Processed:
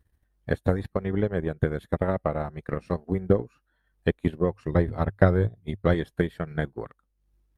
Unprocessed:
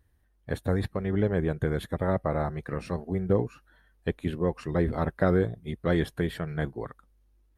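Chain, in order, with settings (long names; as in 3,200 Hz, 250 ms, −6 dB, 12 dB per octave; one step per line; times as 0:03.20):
0:04.49–0:05.94: parametric band 100 Hz +12.5 dB 0.27 octaves
transient designer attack +9 dB, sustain −9 dB
level −2.5 dB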